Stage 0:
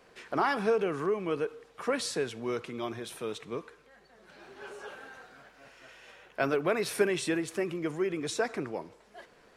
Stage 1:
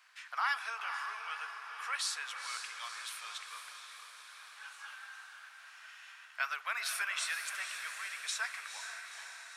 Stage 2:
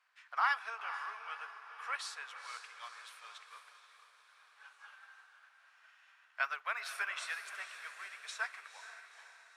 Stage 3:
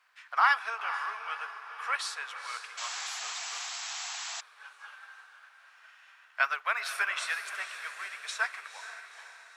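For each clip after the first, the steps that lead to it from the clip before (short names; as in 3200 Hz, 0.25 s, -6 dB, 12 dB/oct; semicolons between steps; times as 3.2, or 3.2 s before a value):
inverse Chebyshev high-pass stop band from 340 Hz, stop band 60 dB; diffused feedback echo 0.485 s, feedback 63%, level -7 dB
tilt -3 dB/oct; upward expander 1.5:1, over -56 dBFS; gain +4 dB
painted sound noise, 2.77–4.41, 660–7900 Hz -46 dBFS; gain +7.5 dB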